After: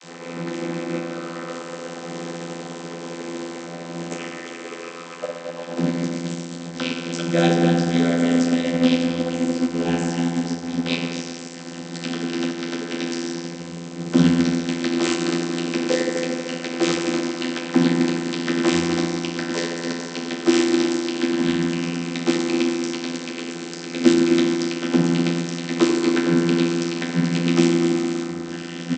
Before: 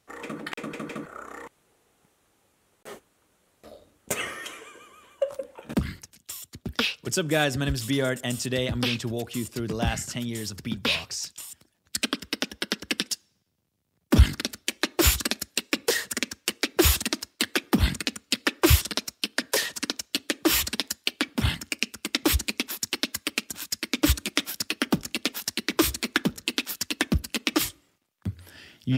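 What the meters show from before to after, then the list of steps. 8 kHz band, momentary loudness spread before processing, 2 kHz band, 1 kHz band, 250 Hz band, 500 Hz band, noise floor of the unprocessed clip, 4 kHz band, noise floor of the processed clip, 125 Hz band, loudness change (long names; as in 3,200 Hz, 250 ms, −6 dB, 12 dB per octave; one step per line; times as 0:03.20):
−3.0 dB, 15 LU, +0.5 dB, +5.0 dB, +11.0 dB, +8.0 dB, −70 dBFS, −1.5 dB, −35 dBFS, +2.5 dB, +4.5 dB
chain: linear delta modulator 64 kbit/s, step −26.5 dBFS
high-shelf EQ 2,300 Hz +11.5 dB
on a send: single-tap delay 250 ms −10.5 dB
on the sum: feedback delay network reverb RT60 3.4 s, high-frequency decay 0.3×, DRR −4.5 dB
channel vocoder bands 32, saw 84.9 Hz
comb filter 3.9 ms, depth 36%
expander for the loud parts 1.5 to 1, over −31 dBFS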